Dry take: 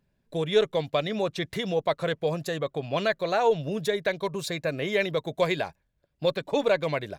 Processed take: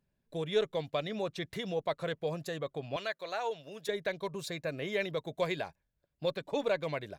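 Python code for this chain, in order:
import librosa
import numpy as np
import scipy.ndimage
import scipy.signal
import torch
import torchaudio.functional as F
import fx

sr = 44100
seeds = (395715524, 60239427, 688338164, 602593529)

y = fx.highpass(x, sr, hz=890.0, slope=6, at=(2.96, 3.89))
y = F.gain(torch.from_numpy(y), -7.5).numpy()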